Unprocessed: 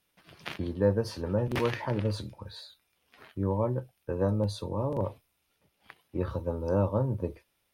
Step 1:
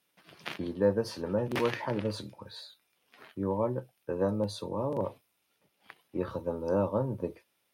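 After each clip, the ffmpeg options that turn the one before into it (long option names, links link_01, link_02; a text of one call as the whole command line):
ffmpeg -i in.wav -af "highpass=160" out.wav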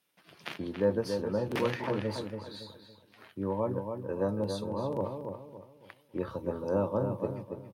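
ffmpeg -i in.wav -filter_complex "[0:a]asplit=2[link_01][link_02];[link_02]adelay=281,lowpass=frequency=2500:poles=1,volume=-6dB,asplit=2[link_03][link_04];[link_04]adelay=281,lowpass=frequency=2500:poles=1,volume=0.36,asplit=2[link_05][link_06];[link_06]adelay=281,lowpass=frequency=2500:poles=1,volume=0.36,asplit=2[link_07][link_08];[link_08]adelay=281,lowpass=frequency=2500:poles=1,volume=0.36[link_09];[link_01][link_03][link_05][link_07][link_09]amix=inputs=5:normalize=0,volume=-1.5dB" out.wav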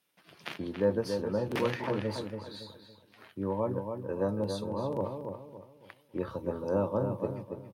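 ffmpeg -i in.wav -af anull out.wav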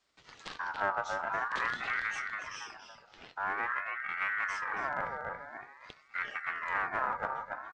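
ffmpeg -i in.wav -filter_complex "[0:a]acrossover=split=300[link_01][link_02];[link_02]acompressor=threshold=-45dB:ratio=2[link_03];[link_01][link_03]amix=inputs=2:normalize=0,aresample=16000,aeval=exprs='clip(val(0),-1,0.0158)':channel_layout=same,aresample=44100,aeval=exprs='val(0)*sin(2*PI*1400*n/s+1400*0.25/0.48*sin(2*PI*0.48*n/s))':channel_layout=same,volume=5.5dB" out.wav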